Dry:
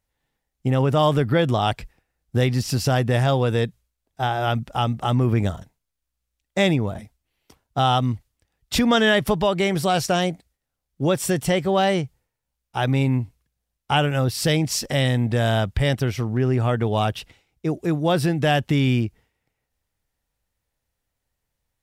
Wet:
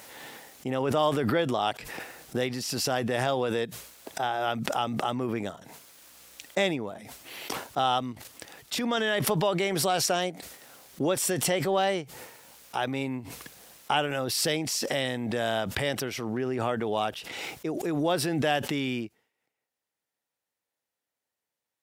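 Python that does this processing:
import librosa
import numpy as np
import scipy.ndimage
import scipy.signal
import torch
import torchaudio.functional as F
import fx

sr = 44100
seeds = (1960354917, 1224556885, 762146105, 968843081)

y = fx.level_steps(x, sr, step_db=10, at=(8.13, 9.2))
y = scipy.signal.sosfilt(scipy.signal.butter(2, 280.0, 'highpass', fs=sr, output='sos'), y)
y = fx.pre_swell(y, sr, db_per_s=27.0)
y = y * librosa.db_to_amplitude(-5.5)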